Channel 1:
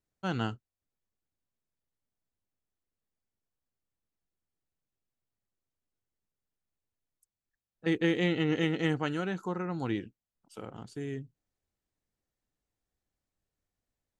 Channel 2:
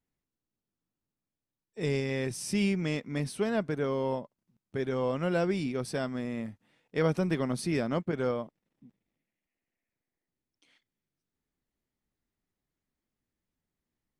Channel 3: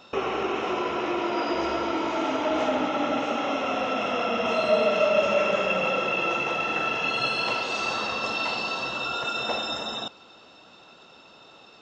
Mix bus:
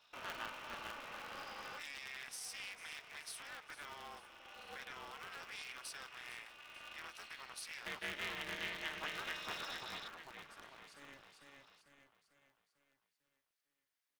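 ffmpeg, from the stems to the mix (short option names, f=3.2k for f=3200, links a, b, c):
-filter_complex "[0:a]volume=-7.5dB,asplit=2[a][b];[b]volume=-3.5dB[c];[1:a]highpass=1.1k,acompressor=threshold=-45dB:ratio=6,alimiter=level_in=14dB:limit=-24dB:level=0:latency=1:release=37,volume=-14dB,volume=2dB,asplit=3[d][e][f];[e]volume=-15.5dB[g];[2:a]volume=-16.5dB[h];[f]apad=whole_len=520980[i];[h][i]sidechaincompress=threshold=-56dB:ratio=12:attack=16:release=1180[j];[c][g]amix=inputs=2:normalize=0,aecho=0:1:447|894|1341|1788|2235|2682|3129:1|0.49|0.24|0.118|0.0576|0.0282|0.0138[k];[a][d][j][k]amix=inputs=4:normalize=0,highpass=1k,equalizer=f=7.2k:w=5.8:g=-5.5,aeval=exprs='val(0)*sgn(sin(2*PI*140*n/s))':c=same"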